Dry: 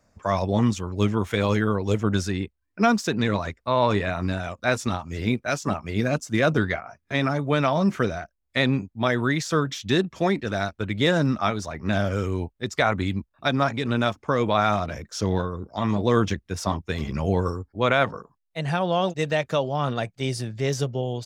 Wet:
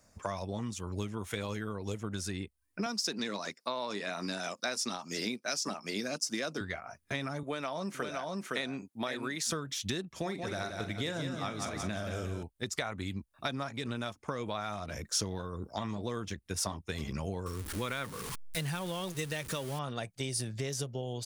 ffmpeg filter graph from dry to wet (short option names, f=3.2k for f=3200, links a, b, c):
-filter_complex "[0:a]asettb=1/sr,asplit=3[a][b][c];[a]atrim=end=2.864[d];[b]atrim=start=2.86:end=6.61,asetpts=PTS-STARTPTS,afade=t=in:d=0.004:c=qsin,afade=t=out:st=3.746:d=0.004:c=qsin,highpass=f=190:w=0.5412,highpass=f=190:w=1.3066,equalizer=f=5.1k:t=o:w=0.49:g=13.5[e];[c]atrim=start=6.606[f];[d][e]acrossfade=d=0.004:c1=hsin:c2=qsin[g];[g][f]acrossfade=d=0.004:c1=qsin:c2=hsin,asettb=1/sr,asplit=3[h][i][j];[h]atrim=end=7.434[k];[i]atrim=start=7.43:end=9.51,asetpts=PTS-STARTPTS,afade=t=in:d=0.004:c=qsin,afade=t=out:st=2.076:d=0.004:c=qsin,highpass=240,aecho=1:1:513:0.501,atrim=end_sample=91728[l];[j]atrim=start=9.506[m];[k][l]acrossfade=d=0.004:c1=hsin:c2=qsin[n];[n][m]acrossfade=d=0.004:c1=qsin:c2=hsin,asettb=1/sr,asplit=3[o][p][q];[o]atrim=end=10.204[r];[p]atrim=start=10.2:end=12.43,asetpts=PTS-STARTPTS,afade=t=in:d=0.004:c=qsin,afade=t=out:st=2.226:d=0.004:c=qsin,asplit=2[s][t];[t]adelay=43,volume=-11.5dB[u];[s][u]amix=inputs=2:normalize=0,atrim=end_sample=98343,aecho=1:1:177|354|531|708|885:0.422|0.194|0.0892|0.041|0.0189,atrim=end_sample=98343[v];[q]atrim=start=12.426[w];[r][v]acrossfade=d=0.004:c1=hsin:c2=qsin[x];[x][w]acrossfade=d=0.004:c1=qsin:c2=hsin,asettb=1/sr,asplit=3[y][z][aa];[y]atrim=end=17.464[ab];[z]atrim=start=17.46:end=19.79,asetpts=PTS-STARTPTS,afade=t=in:d=0.004:c=qsin,afade=t=out:st=2.326:d=0.004:c=qsin,aeval=exprs='val(0)+0.5*0.0251*sgn(val(0))':c=same,equalizer=f=680:t=o:w=0.61:g=-9[ac];[aa]atrim=start=19.786[ad];[ab][ac]acrossfade=d=0.004:c1=hsin:c2=qsin[ae];[ae][ad]acrossfade=d=0.004:c1=qsin:c2=hsin,equalizer=f=9.6k:t=o:w=0.26:g=7.5,acompressor=threshold=-31dB:ratio=10,highshelf=f=4.2k:g=10,volume=-2dB"